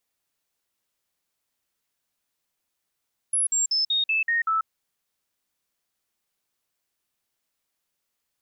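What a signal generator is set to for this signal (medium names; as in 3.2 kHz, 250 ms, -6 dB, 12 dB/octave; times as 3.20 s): stepped sine 10.5 kHz down, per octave 2, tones 7, 0.14 s, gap 0.05 s -20 dBFS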